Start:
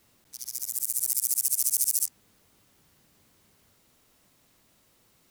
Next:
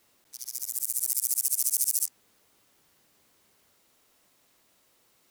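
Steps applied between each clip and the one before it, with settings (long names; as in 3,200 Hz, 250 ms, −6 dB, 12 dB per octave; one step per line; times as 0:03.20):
bass and treble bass −10 dB, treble 0 dB
level −1 dB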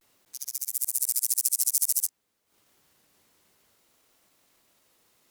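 transient designer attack +4 dB, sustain −11 dB
pitch vibrato 0.53 Hz 64 cents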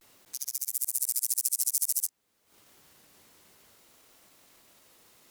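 downward compressor 1.5 to 1, threshold −47 dBFS, peak gain reduction 10 dB
level +6.5 dB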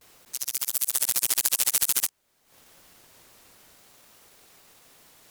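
sub-harmonics by changed cycles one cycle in 2, inverted
level +4.5 dB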